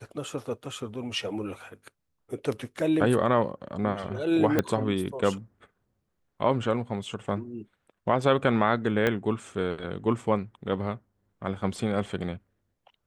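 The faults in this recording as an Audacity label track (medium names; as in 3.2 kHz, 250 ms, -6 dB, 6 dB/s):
4.590000	4.590000	pop -10 dBFS
9.070000	9.070000	pop -12 dBFS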